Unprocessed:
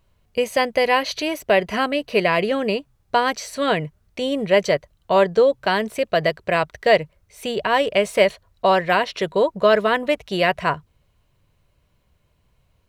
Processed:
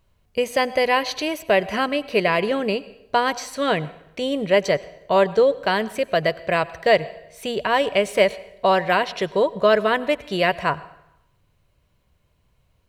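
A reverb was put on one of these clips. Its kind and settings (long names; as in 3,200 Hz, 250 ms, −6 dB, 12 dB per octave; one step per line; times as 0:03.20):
dense smooth reverb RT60 0.85 s, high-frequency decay 0.85×, pre-delay 80 ms, DRR 18.5 dB
level −1 dB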